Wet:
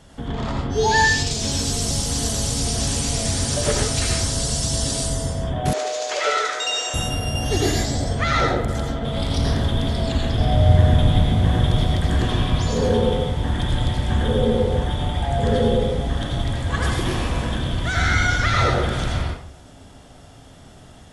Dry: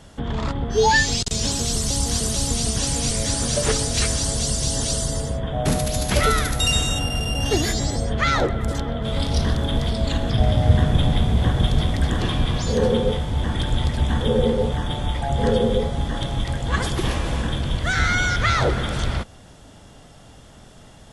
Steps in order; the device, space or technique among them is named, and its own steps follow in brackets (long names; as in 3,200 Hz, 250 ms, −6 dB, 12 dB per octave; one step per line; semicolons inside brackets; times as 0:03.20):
bathroom (convolution reverb RT60 0.55 s, pre-delay 80 ms, DRR −1.5 dB)
0:05.73–0:06.94: elliptic band-pass filter 430–7,100 Hz, stop band 40 dB
level −3 dB